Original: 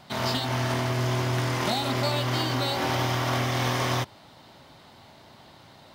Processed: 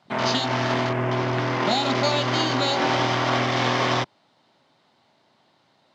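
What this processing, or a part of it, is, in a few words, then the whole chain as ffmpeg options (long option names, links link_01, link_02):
over-cleaned archive recording: -filter_complex "[0:a]highpass=170,lowpass=7300,afwtdn=0.0126,asettb=1/sr,asplit=3[link_01][link_02][link_03];[link_01]atrim=end=0.894[link_04];[link_02]atrim=start=0.89:end=1.71,asetpts=PTS-STARTPTS,afade=type=in:duration=0.004:curve=qsin,afade=type=out:start_time=0.816:duration=0.004:curve=qsin,equalizer=frequency=7000:width=0.43:gain=-5.5[link_05];[link_03]atrim=start=1.706[link_06];[link_04][link_05]acrossfade=duration=0.004:curve1=hsin:curve2=qsin[link_07];[link_07][link_06]acrossfade=duration=0.004:curve1=qsin:curve2=hsin,volume=5.5dB"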